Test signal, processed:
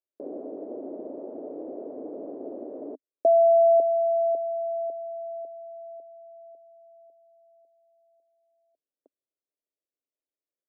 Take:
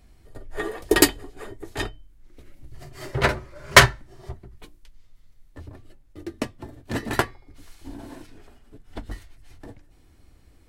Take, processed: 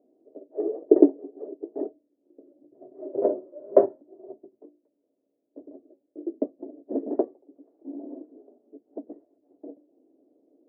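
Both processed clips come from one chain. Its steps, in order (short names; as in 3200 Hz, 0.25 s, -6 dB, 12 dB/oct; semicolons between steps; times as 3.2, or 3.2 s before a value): Chebyshev band-pass 270–630 Hz, order 3; gain +4 dB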